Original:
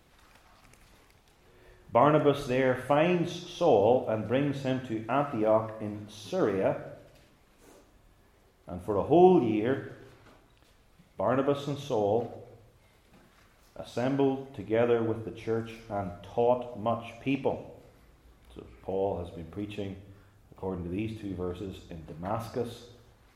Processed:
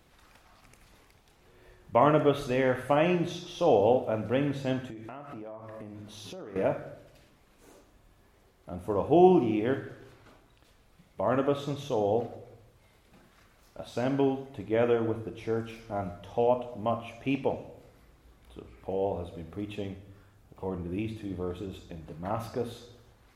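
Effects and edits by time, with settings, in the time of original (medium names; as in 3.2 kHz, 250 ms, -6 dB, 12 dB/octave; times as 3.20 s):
4.90–6.56 s: compression 20:1, threshold -38 dBFS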